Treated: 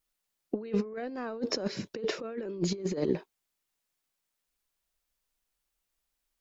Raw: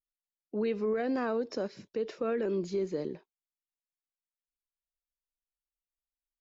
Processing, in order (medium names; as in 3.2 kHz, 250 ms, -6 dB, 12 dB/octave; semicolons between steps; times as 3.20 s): compressor with a negative ratio -37 dBFS, ratio -0.5; trim +6 dB